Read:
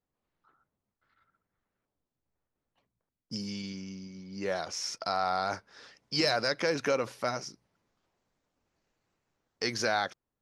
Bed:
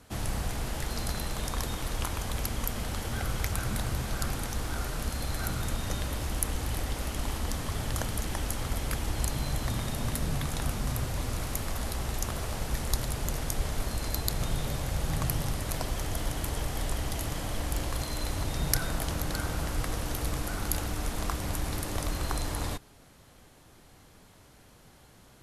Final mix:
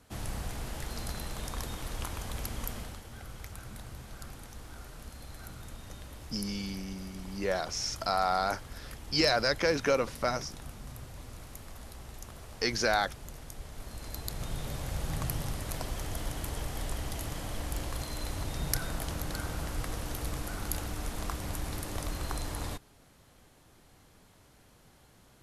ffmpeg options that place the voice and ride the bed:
-filter_complex "[0:a]adelay=3000,volume=1.5dB[a];[1:a]volume=4.5dB,afade=t=out:st=2.72:d=0.3:silence=0.375837,afade=t=in:st=13.7:d=1.21:silence=0.334965[b];[a][b]amix=inputs=2:normalize=0"

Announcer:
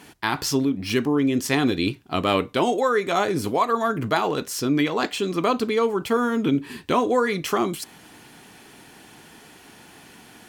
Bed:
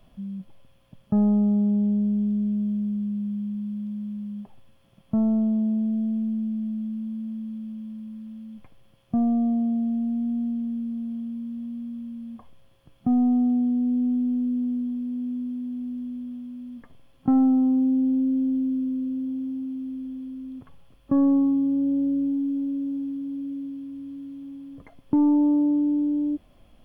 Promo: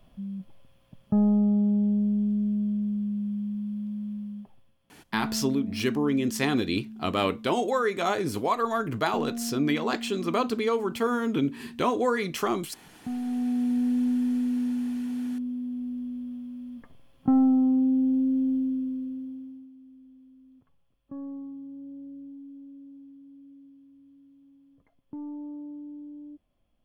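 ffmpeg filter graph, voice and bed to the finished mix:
-filter_complex "[0:a]adelay=4900,volume=-4.5dB[a];[1:a]volume=8.5dB,afade=t=out:st=4.14:d=0.62:silence=0.316228,afade=t=in:st=13.23:d=0.54:silence=0.316228,afade=t=out:st=18.53:d=1.18:silence=0.141254[b];[a][b]amix=inputs=2:normalize=0"

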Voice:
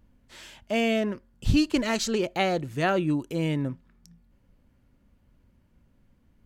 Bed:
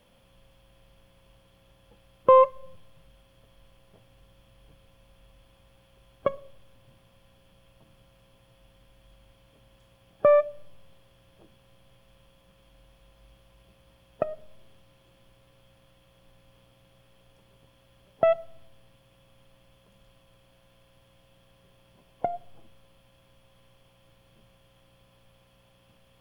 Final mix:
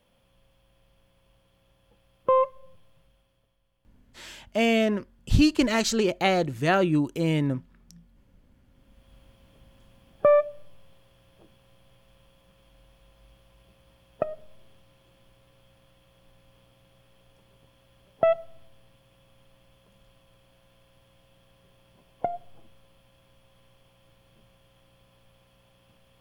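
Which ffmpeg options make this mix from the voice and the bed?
-filter_complex "[0:a]adelay=3850,volume=2.5dB[a];[1:a]volume=11.5dB,afade=t=out:st=2.94:d=0.65:silence=0.266073,afade=t=in:st=8.65:d=0.52:silence=0.149624[b];[a][b]amix=inputs=2:normalize=0"

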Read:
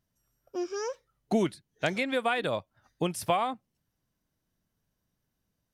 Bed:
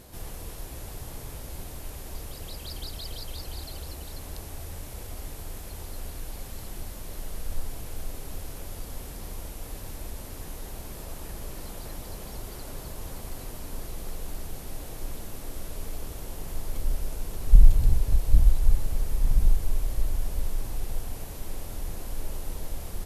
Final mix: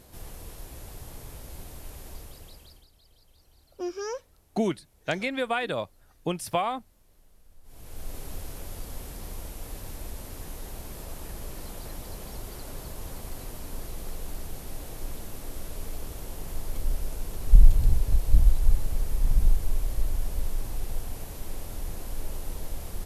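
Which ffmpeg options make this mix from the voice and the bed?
-filter_complex "[0:a]adelay=3250,volume=0dB[a];[1:a]volume=19.5dB,afade=t=out:st=2.07:d=0.8:silence=0.1,afade=t=in:st=7.63:d=0.54:silence=0.0707946[b];[a][b]amix=inputs=2:normalize=0"

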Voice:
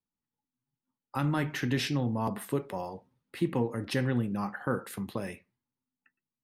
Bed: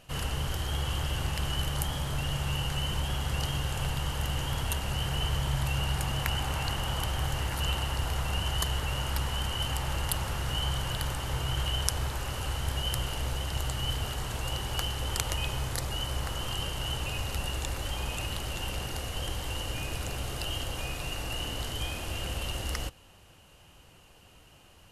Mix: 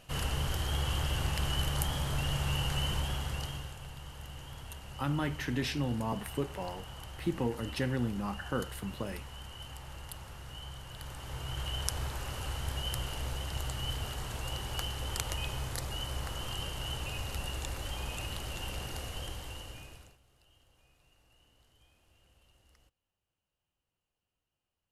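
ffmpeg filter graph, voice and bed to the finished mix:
-filter_complex "[0:a]adelay=3850,volume=-3.5dB[a];[1:a]volume=9dB,afade=t=out:st=2.86:d=0.92:silence=0.211349,afade=t=in:st=10.89:d=1.09:silence=0.316228,afade=t=out:st=19.03:d=1.15:silence=0.0398107[b];[a][b]amix=inputs=2:normalize=0"

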